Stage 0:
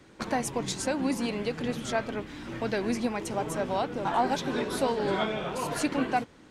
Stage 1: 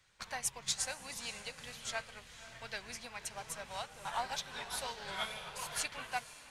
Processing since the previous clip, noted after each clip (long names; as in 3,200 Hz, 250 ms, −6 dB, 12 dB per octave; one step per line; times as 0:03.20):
guitar amp tone stack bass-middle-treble 10-0-10
feedback delay with all-pass diffusion 532 ms, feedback 42%, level −9.5 dB
expander for the loud parts 1.5 to 1, over −47 dBFS
level +1.5 dB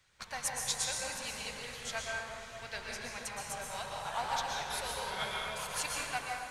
dense smooth reverb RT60 1.9 s, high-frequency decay 0.5×, pre-delay 105 ms, DRR −2 dB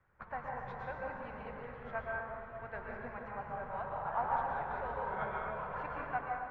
low-pass filter 1,500 Hz 24 dB per octave
level +2 dB